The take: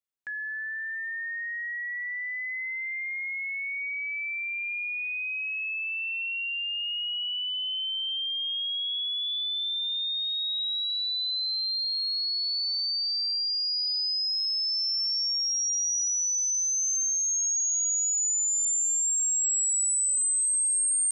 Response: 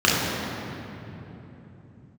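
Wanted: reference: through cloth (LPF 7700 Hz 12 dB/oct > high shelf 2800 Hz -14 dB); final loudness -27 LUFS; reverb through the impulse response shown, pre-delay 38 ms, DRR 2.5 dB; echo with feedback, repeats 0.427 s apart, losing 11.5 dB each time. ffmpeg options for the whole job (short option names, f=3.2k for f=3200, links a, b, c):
-filter_complex "[0:a]aecho=1:1:427|854|1281:0.266|0.0718|0.0194,asplit=2[a][b];[1:a]atrim=start_sample=2205,adelay=38[c];[b][c]afir=irnorm=-1:irlink=0,volume=-24.5dB[d];[a][d]amix=inputs=2:normalize=0,lowpass=7.7k,highshelf=f=2.8k:g=-14,volume=7.5dB"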